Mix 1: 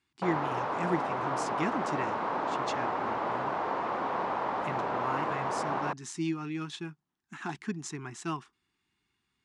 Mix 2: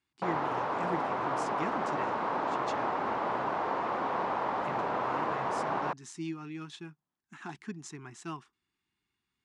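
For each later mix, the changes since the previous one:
speech −5.5 dB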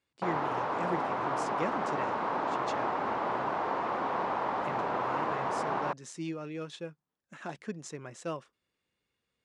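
speech: remove Chebyshev band-stop filter 370–800 Hz, order 2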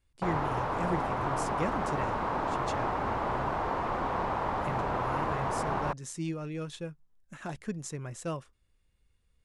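master: remove band-pass filter 220–6,300 Hz

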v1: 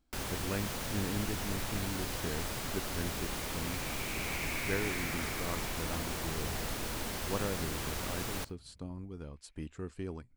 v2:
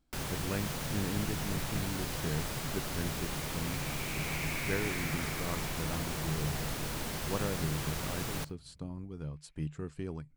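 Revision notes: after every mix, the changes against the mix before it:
master: add parametric band 150 Hz +13.5 dB 0.21 octaves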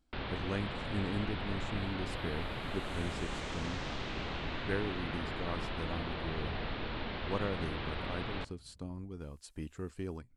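first sound: add Butterworth low-pass 4,000 Hz 48 dB per octave
second sound: remove low-pass with resonance 2,300 Hz, resonance Q 8.6
master: add parametric band 150 Hz −13.5 dB 0.21 octaves

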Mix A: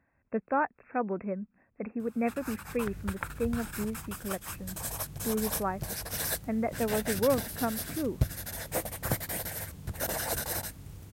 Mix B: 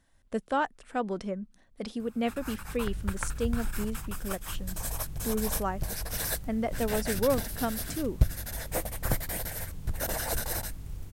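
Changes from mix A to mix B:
speech: remove linear-phase brick-wall low-pass 2,700 Hz
master: remove high-pass filter 83 Hz 12 dB per octave

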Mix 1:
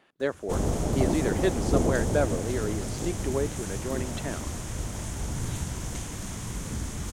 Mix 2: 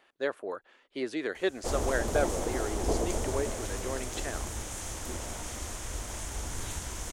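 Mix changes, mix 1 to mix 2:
background: entry +1.15 s
master: add parametric band 150 Hz −15 dB 1.7 octaves

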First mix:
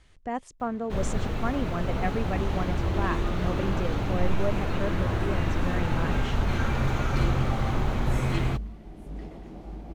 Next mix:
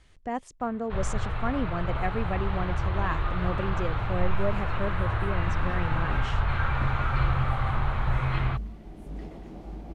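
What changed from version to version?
first sound: add drawn EQ curve 130 Hz 0 dB, 230 Hz −16 dB, 1,200 Hz +5 dB, 4,100 Hz −5 dB, 6,000 Hz −21 dB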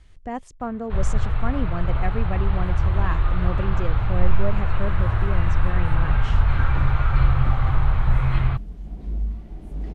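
second sound: entry +0.65 s
master: add low-shelf EQ 120 Hz +10.5 dB

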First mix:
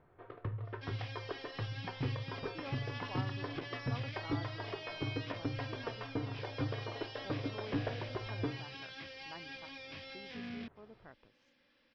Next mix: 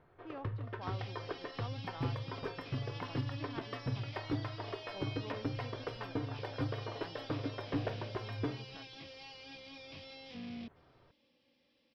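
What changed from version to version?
speech: entry −2.30 s
first sound: remove high-frequency loss of the air 210 metres
second sound: add parametric band 1,600 Hz −12 dB 0.81 octaves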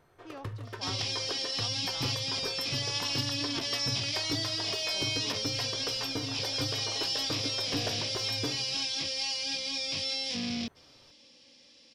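second sound +9.0 dB
master: remove high-frequency loss of the air 360 metres

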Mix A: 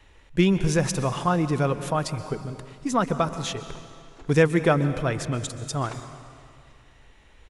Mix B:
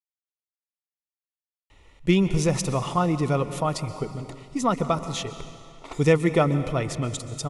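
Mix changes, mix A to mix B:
speech: entry +1.70 s
master: add Butterworth band-reject 1,600 Hz, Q 4.9

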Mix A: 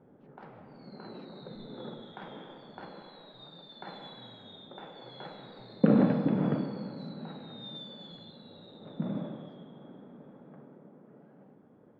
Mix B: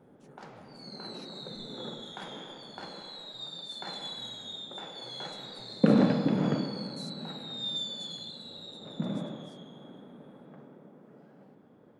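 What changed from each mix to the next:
speech: add parametric band 9,000 Hz +14 dB 0.62 octaves
master: remove high-frequency loss of the air 440 metres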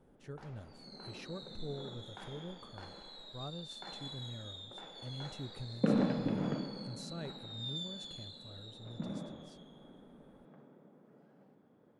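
speech: remove first-order pre-emphasis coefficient 0.8
background −7.5 dB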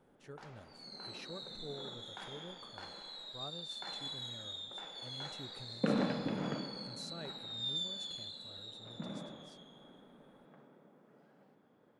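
speech: add low-shelf EQ 220 Hz −11 dB
background: add tilt shelving filter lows −4.5 dB, about 660 Hz

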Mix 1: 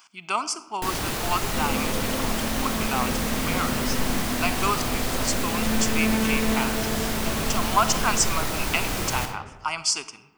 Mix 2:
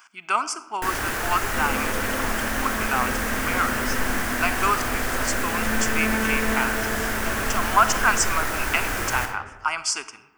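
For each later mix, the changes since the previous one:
master: add graphic EQ with 15 bands 160 Hz −9 dB, 1,600 Hz +10 dB, 4,000 Hz −6 dB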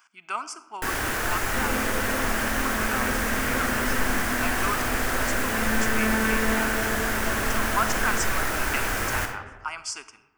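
speech −8.0 dB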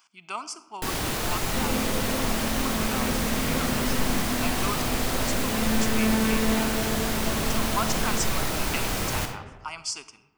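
master: add graphic EQ with 15 bands 160 Hz +9 dB, 1,600 Hz −10 dB, 4,000 Hz +6 dB

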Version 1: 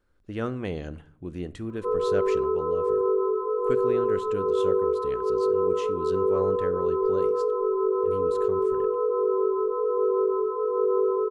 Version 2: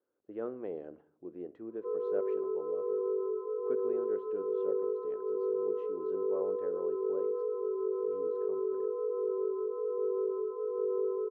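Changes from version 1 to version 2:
speech +4.0 dB
master: add four-pole ladder band-pass 510 Hz, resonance 30%

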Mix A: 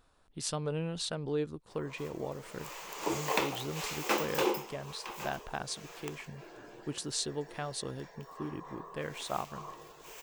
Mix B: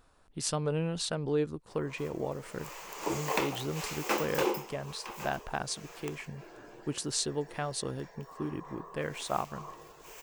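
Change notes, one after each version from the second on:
speech +3.5 dB
master: add parametric band 3,600 Hz −3.5 dB 0.56 octaves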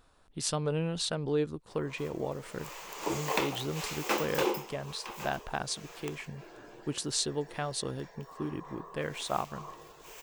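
master: add parametric band 3,600 Hz +3.5 dB 0.56 octaves

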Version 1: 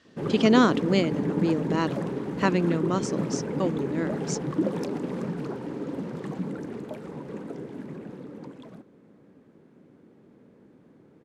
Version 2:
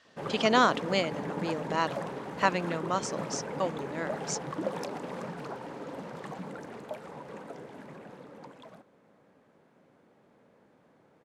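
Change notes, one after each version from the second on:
master: add low shelf with overshoot 480 Hz −9 dB, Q 1.5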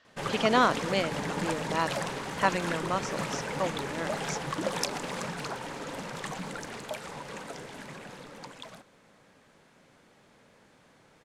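background: remove resonant band-pass 350 Hz, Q 0.53
master: add high-frequency loss of the air 64 metres

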